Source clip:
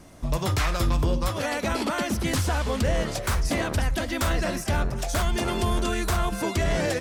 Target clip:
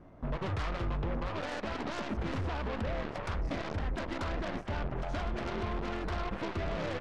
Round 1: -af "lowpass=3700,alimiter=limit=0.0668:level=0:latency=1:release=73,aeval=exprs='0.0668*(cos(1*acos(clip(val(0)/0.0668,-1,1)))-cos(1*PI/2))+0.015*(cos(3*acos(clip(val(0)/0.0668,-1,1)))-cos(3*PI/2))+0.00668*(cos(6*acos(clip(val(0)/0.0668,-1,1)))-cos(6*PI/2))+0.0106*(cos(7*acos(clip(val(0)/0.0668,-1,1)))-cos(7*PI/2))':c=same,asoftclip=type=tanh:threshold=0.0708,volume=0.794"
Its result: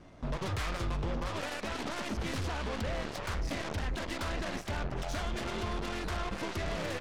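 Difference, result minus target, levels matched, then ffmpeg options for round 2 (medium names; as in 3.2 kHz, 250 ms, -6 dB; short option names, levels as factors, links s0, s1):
4 kHz band +4.5 dB
-af "lowpass=1400,alimiter=limit=0.0668:level=0:latency=1:release=73,aeval=exprs='0.0668*(cos(1*acos(clip(val(0)/0.0668,-1,1)))-cos(1*PI/2))+0.015*(cos(3*acos(clip(val(0)/0.0668,-1,1)))-cos(3*PI/2))+0.00668*(cos(6*acos(clip(val(0)/0.0668,-1,1)))-cos(6*PI/2))+0.0106*(cos(7*acos(clip(val(0)/0.0668,-1,1)))-cos(7*PI/2))':c=same,asoftclip=type=tanh:threshold=0.0708,volume=0.794"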